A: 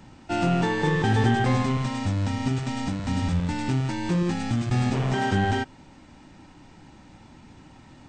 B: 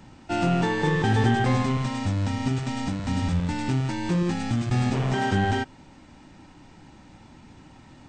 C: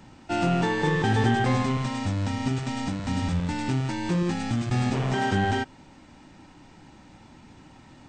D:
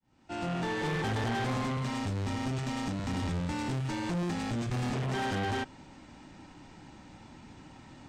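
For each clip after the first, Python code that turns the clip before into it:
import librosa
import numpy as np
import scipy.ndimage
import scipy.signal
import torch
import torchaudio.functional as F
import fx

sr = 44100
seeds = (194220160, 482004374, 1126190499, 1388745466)

y1 = x
y2 = fx.low_shelf(y1, sr, hz=150.0, db=-3.0)
y3 = fx.fade_in_head(y2, sr, length_s=0.93)
y3 = fx.tube_stage(y3, sr, drive_db=29.0, bias=0.3)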